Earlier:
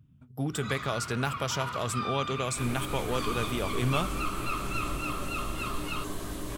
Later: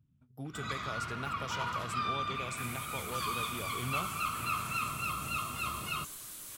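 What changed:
speech -11.0 dB; second sound: add pre-emphasis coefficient 0.97

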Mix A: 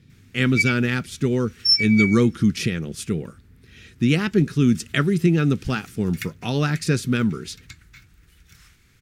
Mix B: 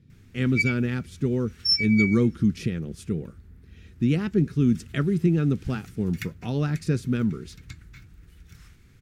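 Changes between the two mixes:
speech -7.5 dB; master: add tilt shelf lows +5 dB, about 840 Hz

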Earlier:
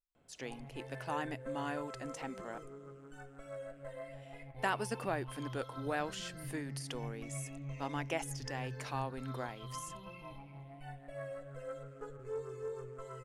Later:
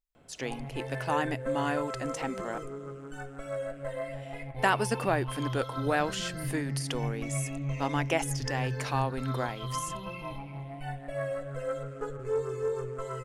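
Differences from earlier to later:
speech +8.5 dB; background +10.5 dB

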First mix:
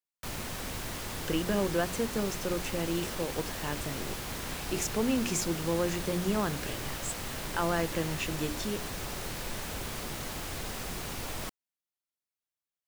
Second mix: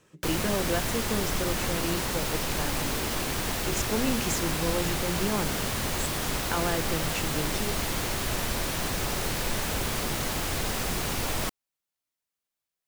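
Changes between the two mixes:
speech: entry -1.05 s; background +8.0 dB

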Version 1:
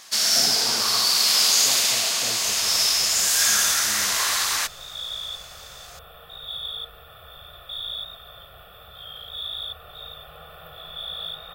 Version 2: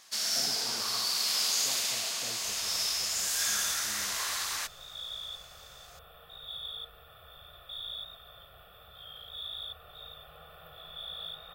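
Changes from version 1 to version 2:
speech -9.0 dB; first sound -10.5 dB; second sound -8.0 dB

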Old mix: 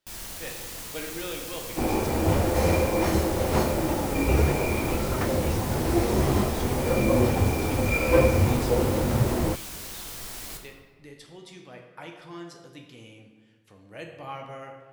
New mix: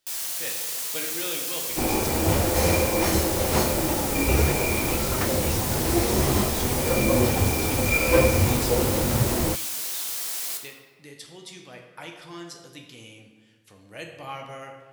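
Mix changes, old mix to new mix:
first sound: add HPF 430 Hz 12 dB/oct; master: add high shelf 2800 Hz +10 dB

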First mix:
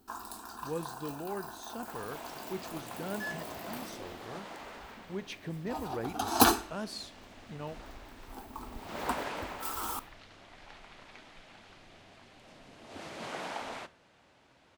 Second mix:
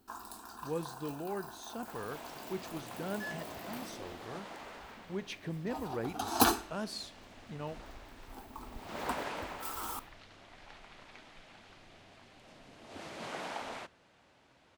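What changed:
first sound -3.5 dB; second sound: send -10.0 dB

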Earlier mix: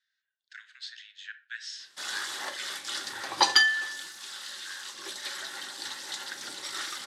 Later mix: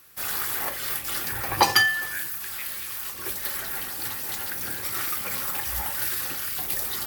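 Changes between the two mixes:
background: entry -1.80 s; master: remove speaker cabinet 420–7600 Hz, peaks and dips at 470 Hz -9 dB, 740 Hz -7 dB, 1200 Hz -6 dB, 2400 Hz -9 dB, 3700 Hz +6 dB

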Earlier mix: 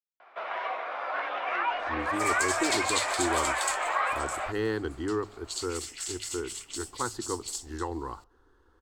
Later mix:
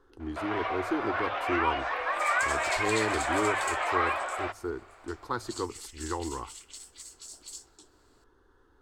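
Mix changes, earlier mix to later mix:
speech: entry -1.70 s; first sound: remove air absorption 63 m; second sound -7.0 dB

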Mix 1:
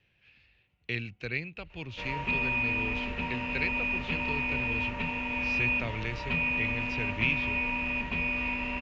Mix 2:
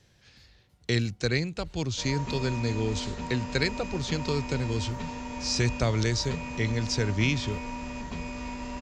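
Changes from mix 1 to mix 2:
speech +11.0 dB; master: remove synth low-pass 2600 Hz, resonance Q 6.6

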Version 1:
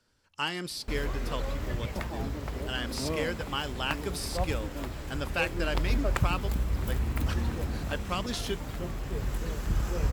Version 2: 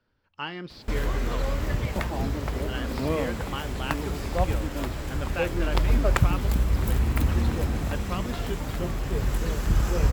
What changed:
speech: add air absorption 280 m; background +6.0 dB

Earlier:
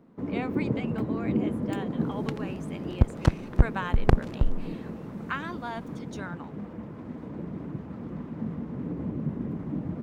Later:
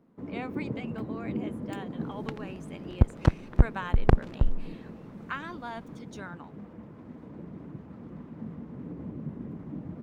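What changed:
speech -3.0 dB; first sound -6.5 dB; second sound: add high shelf 4600 Hz -10 dB

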